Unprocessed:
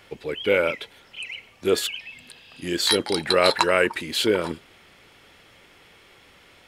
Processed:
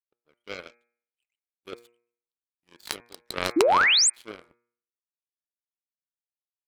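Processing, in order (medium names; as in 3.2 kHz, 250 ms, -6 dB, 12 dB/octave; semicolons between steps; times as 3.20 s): power-law waveshaper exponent 3; painted sound rise, 3.56–4.10 s, 290–9100 Hz -20 dBFS; de-hum 118.7 Hz, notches 21; trim +1 dB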